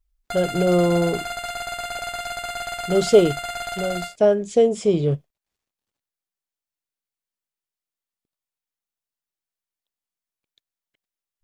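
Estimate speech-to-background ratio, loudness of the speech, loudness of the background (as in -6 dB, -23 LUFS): 9.0 dB, -20.5 LUFS, -29.5 LUFS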